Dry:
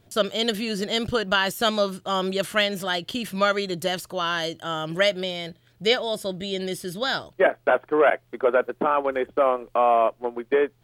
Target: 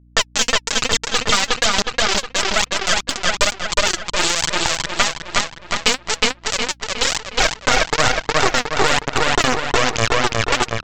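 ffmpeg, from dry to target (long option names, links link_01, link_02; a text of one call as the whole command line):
ffmpeg -i in.wav -filter_complex "[0:a]aeval=exprs='if(lt(val(0),0),0.251*val(0),val(0))':channel_layout=same,highpass=43,lowshelf=frequency=340:gain=-10,aecho=1:1:6.3:0.54,aeval=exprs='sgn(val(0))*max(abs(val(0))-0.00266,0)':channel_layout=same,asubboost=boost=11.5:cutoff=90,acompressor=threshold=-37dB:ratio=4,aresample=16000,acrusher=bits=4:mix=0:aa=0.000001,aresample=44100,aphaser=in_gain=1:out_gain=1:delay=4.3:decay=0.64:speed=1.1:type=triangular,asplit=2[link_01][link_02];[link_02]adelay=363,lowpass=frequency=4900:poles=1,volume=-4.5dB,asplit=2[link_03][link_04];[link_04]adelay=363,lowpass=frequency=4900:poles=1,volume=0.5,asplit=2[link_05][link_06];[link_06]adelay=363,lowpass=frequency=4900:poles=1,volume=0.5,asplit=2[link_07][link_08];[link_08]adelay=363,lowpass=frequency=4900:poles=1,volume=0.5,asplit=2[link_09][link_10];[link_10]adelay=363,lowpass=frequency=4900:poles=1,volume=0.5,asplit=2[link_11][link_12];[link_12]adelay=363,lowpass=frequency=4900:poles=1,volume=0.5[link_13];[link_01][link_03][link_05][link_07][link_09][link_11][link_13]amix=inputs=7:normalize=0,aeval=exprs='val(0)+0.000224*(sin(2*PI*60*n/s)+sin(2*PI*2*60*n/s)/2+sin(2*PI*3*60*n/s)/3+sin(2*PI*4*60*n/s)/4+sin(2*PI*5*60*n/s)/5)':channel_layout=same,alimiter=level_in=25.5dB:limit=-1dB:release=50:level=0:latency=1,volume=-1dB" out.wav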